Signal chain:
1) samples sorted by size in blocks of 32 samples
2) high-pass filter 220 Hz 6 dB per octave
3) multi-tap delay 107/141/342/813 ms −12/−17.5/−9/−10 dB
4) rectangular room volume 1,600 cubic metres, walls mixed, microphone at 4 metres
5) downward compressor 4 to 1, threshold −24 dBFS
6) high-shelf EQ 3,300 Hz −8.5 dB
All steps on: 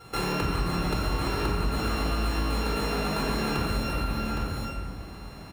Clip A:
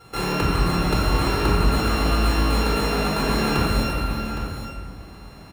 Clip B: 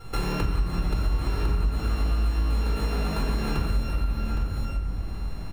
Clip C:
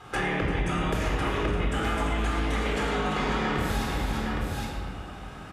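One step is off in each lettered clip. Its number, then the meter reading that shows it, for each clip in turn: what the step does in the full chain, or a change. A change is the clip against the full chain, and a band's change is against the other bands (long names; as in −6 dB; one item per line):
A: 5, change in integrated loudness +6.5 LU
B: 2, 125 Hz band +8.5 dB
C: 1, distortion level −6 dB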